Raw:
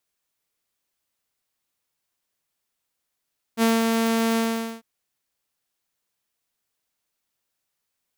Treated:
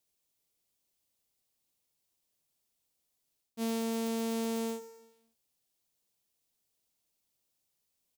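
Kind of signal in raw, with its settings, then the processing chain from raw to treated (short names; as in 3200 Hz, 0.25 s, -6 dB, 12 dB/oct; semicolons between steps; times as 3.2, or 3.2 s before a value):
ADSR saw 227 Hz, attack 54 ms, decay 0.192 s, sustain -3.5 dB, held 0.80 s, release 0.448 s -13.5 dBFS
bell 1500 Hz -10.5 dB 1.5 oct; feedback echo 0.108 s, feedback 55%, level -16.5 dB; reverse; compressor 8:1, threshold -31 dBFS; reverse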